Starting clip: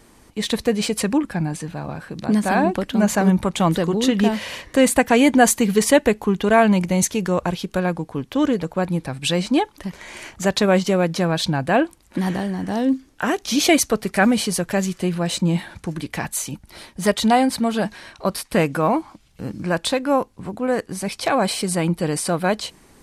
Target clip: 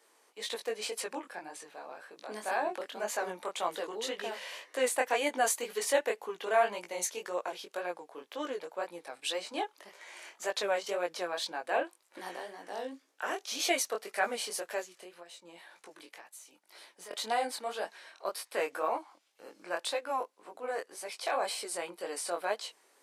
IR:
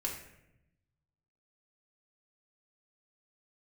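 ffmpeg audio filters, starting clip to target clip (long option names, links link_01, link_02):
-filter_complex "[0:a]highpass=frequency=430:width=0.5412,highpass=frequency=430:width=1.3066,asettb=1/sr,asplit=3[link_01][link_02][link_03];[link_01]atrim=end=14.814[link_04];[link_02]atrim=start=14.81:end=17.11,asetpts=PTS-STARTPTS,afade=type=in:duration=0.004:curve=qsin,afade=type=out:start_time=2.296:duration=0.004:curve=qsin,acompressor=threshold=-36dB:ratio=12[link_05];[link_03]atrim=start=17.106[link_06];[link_04][link_05]acrossfade=duration=0.004:curve1=hsin:curve2=qsin[link_07];[link_07][link_06]acrossfade=duration=0.004:curve1=qsin:curve2=hsin,flanger=delay=17:depth=6.5:speed=1.9,volume=-8.5dB"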